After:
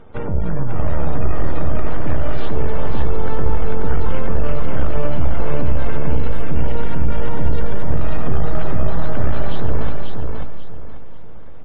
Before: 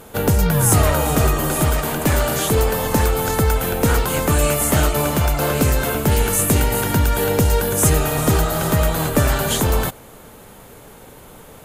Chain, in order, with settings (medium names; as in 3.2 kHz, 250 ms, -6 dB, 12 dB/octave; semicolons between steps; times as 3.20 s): peak limiter -11 dBFS, peak gain reduction 8.5 dB; hum notches 50/100/150/200/250/300 Hz; half-wave rectifier; Savitzky-Golay filter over 15 samples; spectral gate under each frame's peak -30 dB strong; tilt EQ -2 dB/octave; feedback delay 540 ms, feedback 29%, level -4 dB; reverberation RT60 0.70 s, pre-delay 65 ms, DRR 14 dB; trim -3 dB